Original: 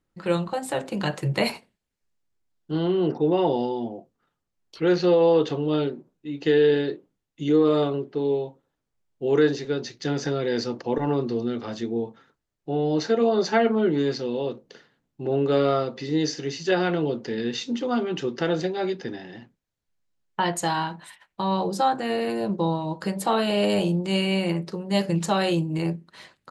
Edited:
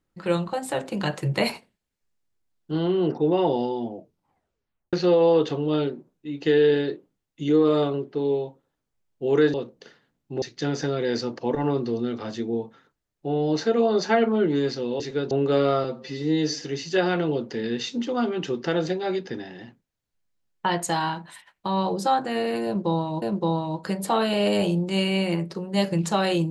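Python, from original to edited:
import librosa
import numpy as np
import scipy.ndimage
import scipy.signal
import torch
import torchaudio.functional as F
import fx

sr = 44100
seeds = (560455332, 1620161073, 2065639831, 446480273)

y = fx.edit(x, sr, fx.tape_stop(start_s=3.94, length_s=0.99),
    fx.swap(start_s=9.54, length_s=0.31, other_s=14.43, other_length_s=0.88),
    fx.stretch_span(start_s=15.84, length_s=0.52, factor=1.5),
    fx.repeat(start_s=22.39, length_s=0.57, count=2), tone=tone)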